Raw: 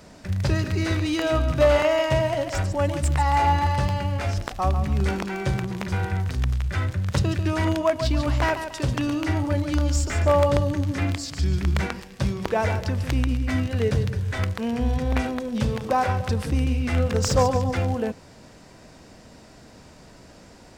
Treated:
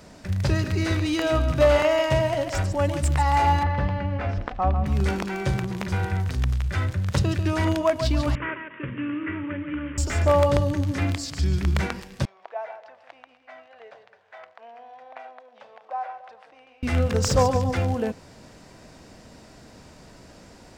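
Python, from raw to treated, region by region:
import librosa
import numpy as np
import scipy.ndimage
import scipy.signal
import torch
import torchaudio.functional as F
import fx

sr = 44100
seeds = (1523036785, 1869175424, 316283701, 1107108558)

y = fx.chain(x, sr, fx.lowpass(hz=2200.0, slope=12),
    fx.comb(ms=4.0, depth=0.33), at=(3.63, 4.86))
y = fx.chain(y, sr, fx.cvsd(bps=16000),
    fx.highpass(hz=200.0, slope=12),
    fx.fixed_phaser(hz=1800.0, stages=4), at=(8.35, 9.98))
y = fx.chain(y, sr, fx.ladder_bandpass(hz=760.0, resonance_pct=65),
    fx.tilt_shelf(db=-9.0, hz=1200.0), at=(12.25, 16.83))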